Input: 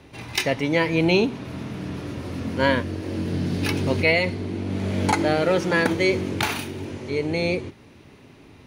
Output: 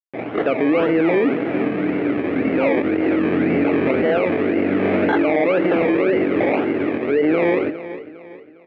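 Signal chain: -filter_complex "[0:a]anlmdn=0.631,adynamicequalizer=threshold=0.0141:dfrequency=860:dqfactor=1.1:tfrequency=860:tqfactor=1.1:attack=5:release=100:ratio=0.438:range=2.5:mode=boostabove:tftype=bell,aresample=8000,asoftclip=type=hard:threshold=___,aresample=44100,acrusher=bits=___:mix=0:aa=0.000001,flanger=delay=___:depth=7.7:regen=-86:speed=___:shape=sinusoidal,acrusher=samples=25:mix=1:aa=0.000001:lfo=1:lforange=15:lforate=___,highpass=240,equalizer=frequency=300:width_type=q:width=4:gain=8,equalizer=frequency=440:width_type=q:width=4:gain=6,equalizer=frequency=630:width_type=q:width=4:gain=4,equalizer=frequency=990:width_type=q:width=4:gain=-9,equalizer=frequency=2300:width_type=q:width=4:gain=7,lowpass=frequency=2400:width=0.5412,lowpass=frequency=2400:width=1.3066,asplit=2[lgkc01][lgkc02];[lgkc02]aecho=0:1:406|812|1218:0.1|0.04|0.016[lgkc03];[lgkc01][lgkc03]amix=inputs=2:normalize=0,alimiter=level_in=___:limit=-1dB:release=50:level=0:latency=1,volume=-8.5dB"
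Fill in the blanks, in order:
-15.5dB, 6, 5.8, 0.35, 1.9, 22.5dB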